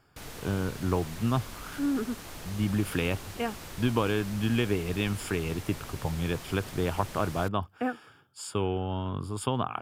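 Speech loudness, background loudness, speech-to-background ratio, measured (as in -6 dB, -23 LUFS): -31.0 LUFS, -42.5 LUFS, 11.5 dB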